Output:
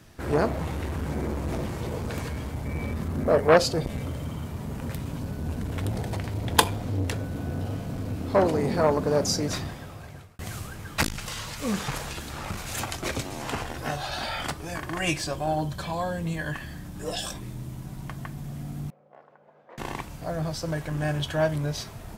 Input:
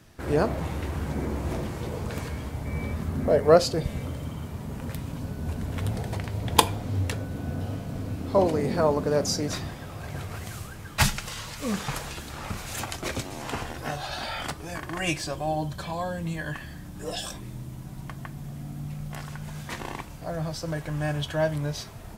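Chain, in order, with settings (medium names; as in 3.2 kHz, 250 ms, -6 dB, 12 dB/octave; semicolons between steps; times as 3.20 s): 9.60–10.39 s: fade out; 18.90–19.78 s: ladder band-pass 600 Hz, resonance 50%; transformer saturation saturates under 1.3 kHz; trim +2 dB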